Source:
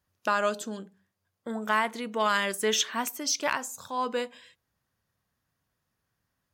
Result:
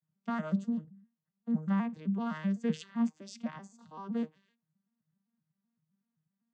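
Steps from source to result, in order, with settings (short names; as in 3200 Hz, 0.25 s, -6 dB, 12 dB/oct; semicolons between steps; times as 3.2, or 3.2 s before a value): arpeggiated vocoder major triad, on D#3, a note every 0.128 s; resonant low shelf 270 Hz +7 dB, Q 3; noise-modulated level, depth 55%; gain -7.5 dB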